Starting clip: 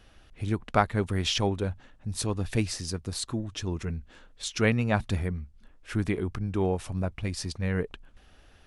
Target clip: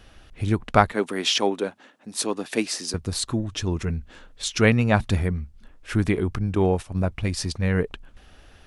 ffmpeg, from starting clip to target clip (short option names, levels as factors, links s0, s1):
-filter_complex "[0:a]asettb=1/sr,asplit=3[s0][s1][s2];[s0]atrim=end=0.924[s3];[s1]atrim=start=0.92:end=2.94,asetpts=PTS-STARTPTS,afade=t=in:d=0.004:c=qsin,afade=t=out:st=2.016:d=0.004:c=qsin,highpass=f=240:w=0.5412,highpass=f=240:w=1.3066[s4];[s2]atrim=start=2.936[s5];[s3][s4]acrossfade=d=0.004:c1=hsin:c2=qsin[s6];[s6][s5]acrossfade=d=0.004:c1=qsin:c2=hsin,asettb=1/sr,asplit=3[s7][s8][s9];[s7]atrim=end=6.554[s10];[s8]atrim=start=6.55:end=7.05,asetpts=PTS-STARTPTS,afade=t=in:d=0.004:c=qsin,afade=t=out:st=0.496:d=0.004:c=qsin,agate=range=0.251:threshold=0.0251:ratio=16:detection=peak[s11];[s9]atrim=start=7.046[s12];[s10][s11]acrossfade=d=0.004:c1=hsin:c2=qsin[s13];[s13][s12]acrossfade=d=0.004:c1=qsin:c2=hsin,volume=2"